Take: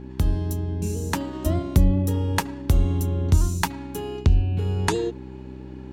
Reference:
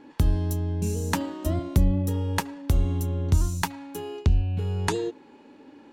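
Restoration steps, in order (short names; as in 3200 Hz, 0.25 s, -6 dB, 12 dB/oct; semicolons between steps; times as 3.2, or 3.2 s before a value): de-hum 64.3 Hz, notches 6; gain correction -3 dB, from 1.33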